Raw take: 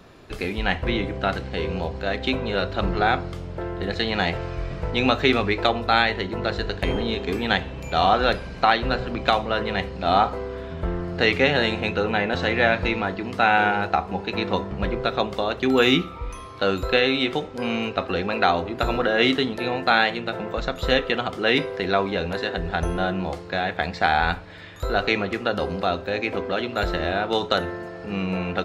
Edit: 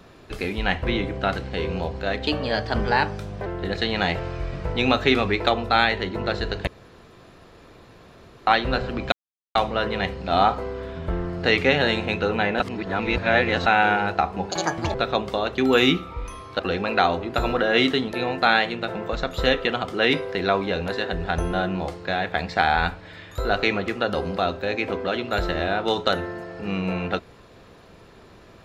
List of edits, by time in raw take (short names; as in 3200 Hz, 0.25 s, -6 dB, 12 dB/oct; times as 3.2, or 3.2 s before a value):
2.27–3.64 speed 115%
6.85–8.65 room tone
9.3 insert silence 0.43 s
12.35–13.41 reverse
14.26–14.99 speed 169%
16.64–18.04 cut